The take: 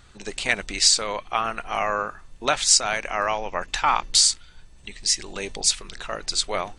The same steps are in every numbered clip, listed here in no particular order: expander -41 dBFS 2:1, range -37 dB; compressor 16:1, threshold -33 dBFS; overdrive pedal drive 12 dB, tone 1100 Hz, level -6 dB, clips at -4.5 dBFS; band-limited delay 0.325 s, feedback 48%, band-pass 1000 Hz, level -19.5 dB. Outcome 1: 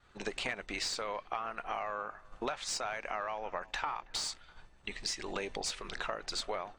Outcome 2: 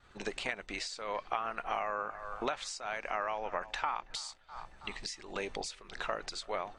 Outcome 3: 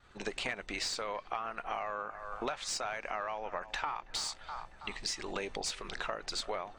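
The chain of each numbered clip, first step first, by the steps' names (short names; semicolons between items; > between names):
overdrive pedal > compressor > band-limited delay > expander; band-limited delay > compressor > expander > overdrive pedal; expander > band-limited delay > overdrive pedal > compressor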